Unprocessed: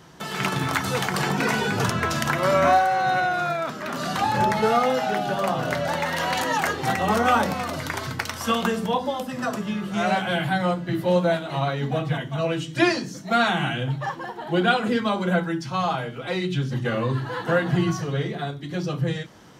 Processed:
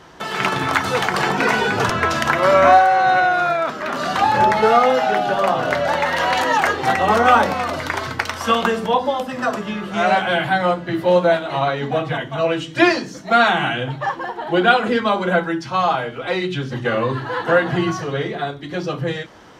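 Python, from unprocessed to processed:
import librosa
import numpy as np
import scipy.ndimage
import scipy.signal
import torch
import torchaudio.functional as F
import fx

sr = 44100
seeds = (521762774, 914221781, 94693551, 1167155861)

y = fx.lowpass(x, sr, hz=3000.0, slope=6)
y = fx.peak_eq(y, sr, hz=150.0, db=-10.0, octaves=1.6)
y = y * 10.0 ** (8.0 / 20.0)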